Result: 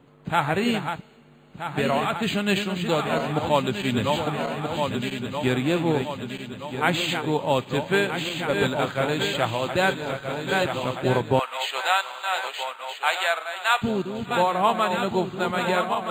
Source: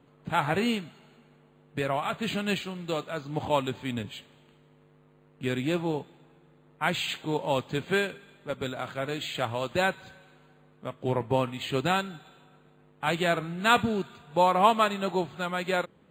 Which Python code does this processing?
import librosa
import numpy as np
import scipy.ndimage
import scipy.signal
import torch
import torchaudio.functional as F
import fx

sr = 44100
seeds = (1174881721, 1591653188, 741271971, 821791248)

y = fx.reverse_delay_fb(x, sr, ms=638, feedback_pct=74, wet_db=-7.5)
y = fx.highpass(y, sr, hz=700.0, slope=24, at=(11.39, 13.82))
y = fx.rider(y, sr, range_db=5, speed_s=0.5)
y = y * 10.0 ** (4.5 / 20.0)